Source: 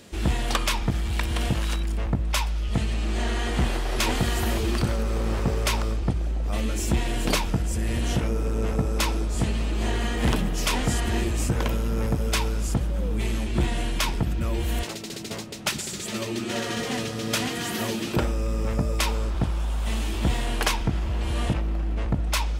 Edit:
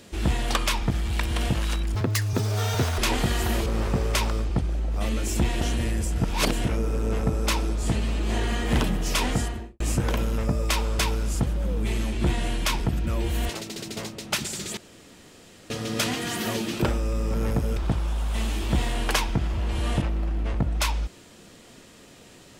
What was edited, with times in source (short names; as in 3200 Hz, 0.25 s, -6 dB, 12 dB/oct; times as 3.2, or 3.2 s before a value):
1.95–3.95 speed 194%
4.63–5.18 cut
7.13–8.17 reverse
10.8–11.32 studio fade out
11.9–12.33 swap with 18.68–19.29
16.11–17.04 room tone